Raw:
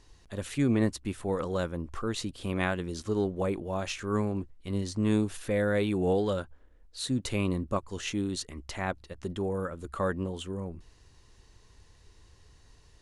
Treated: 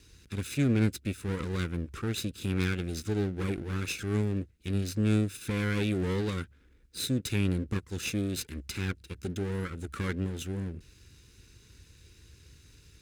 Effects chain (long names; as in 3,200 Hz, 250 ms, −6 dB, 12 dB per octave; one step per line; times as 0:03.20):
lower of the sound and its delayed copy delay 0.8 ms
high-pass filter 58 Hz
flat-topped bell 850 Hz −14 dB 1.2 octaves
in parallel at 0 dB: downward compressor, threshold −42 dBFS, peak gain reduction 18.5 dB